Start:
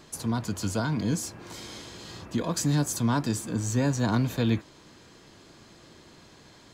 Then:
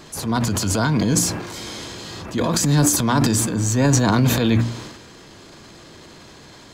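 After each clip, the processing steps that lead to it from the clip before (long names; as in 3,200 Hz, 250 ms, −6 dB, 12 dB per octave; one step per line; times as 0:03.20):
hum removal 58.35 Hz, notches 5
transient designer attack −6 dB, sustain +9 dB
level +9 dB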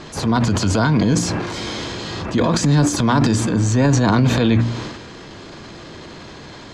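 downward compressor 2 to 1, threshold −23 dBFS, peak gain reduction 6.5 dB
high-frequency loss of the air 94 metres
level +7.5 dB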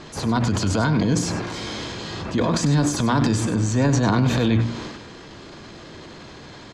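single-tap delay 98 ms −12 dB
level −4 dB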